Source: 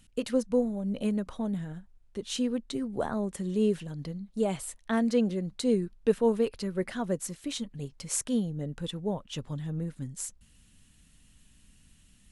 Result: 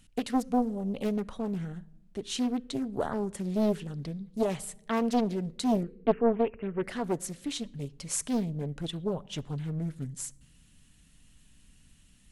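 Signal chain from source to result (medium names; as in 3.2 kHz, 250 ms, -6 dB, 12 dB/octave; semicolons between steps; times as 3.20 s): 5.83–6.84 s: Chebyshev low-pass 2.8 kHz, order 10; simulated room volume 3300 m³, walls furnished, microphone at 0.34 m; loudspeaker Doppler distortion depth 0.6 ms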